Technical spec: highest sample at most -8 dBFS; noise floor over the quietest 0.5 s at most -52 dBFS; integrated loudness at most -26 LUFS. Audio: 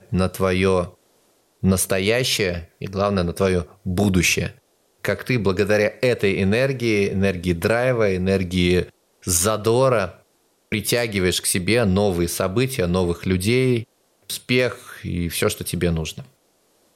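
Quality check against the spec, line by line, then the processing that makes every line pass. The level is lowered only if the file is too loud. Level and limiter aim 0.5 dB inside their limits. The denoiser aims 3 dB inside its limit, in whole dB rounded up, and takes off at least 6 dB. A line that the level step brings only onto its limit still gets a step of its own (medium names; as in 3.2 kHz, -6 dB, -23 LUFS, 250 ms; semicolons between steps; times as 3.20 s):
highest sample -5.5 dBFS: fail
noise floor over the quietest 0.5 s -63 dBFS: pass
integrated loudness -20.5 LUFS: fail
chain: trim -6 dB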